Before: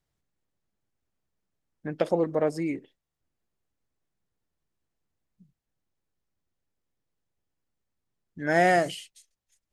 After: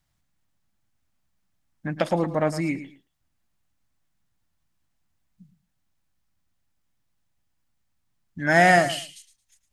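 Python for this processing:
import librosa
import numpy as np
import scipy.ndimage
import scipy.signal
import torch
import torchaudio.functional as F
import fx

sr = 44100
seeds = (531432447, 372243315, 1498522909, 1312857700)

p1 = fx.peak_eq(x, sr, hz=430.0, db=-14.0, octaves=0.7)
p2 = p1 + fx.echo_feedback(p1, sr, ms=111, feedback_pct=21, wet_db=-13.0, dry=0)
y = p2 * 10.0 ** (7.5 / 20.0)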